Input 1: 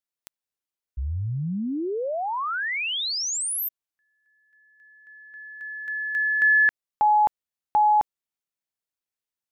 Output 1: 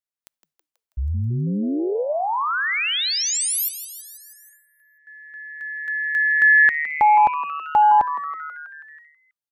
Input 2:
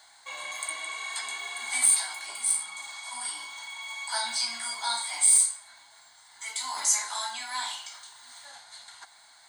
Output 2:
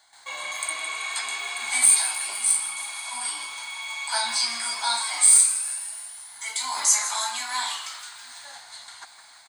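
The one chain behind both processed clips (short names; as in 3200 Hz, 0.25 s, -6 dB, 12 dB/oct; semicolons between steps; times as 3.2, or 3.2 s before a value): frequency-shifting echo 0.162 s, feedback 64%, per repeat +150 Hz, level -12.5 dB; gate with hold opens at -45 dBFS, closes at -49 dBFS, hold 26 ms, range -9 dB; gain +4.5 dB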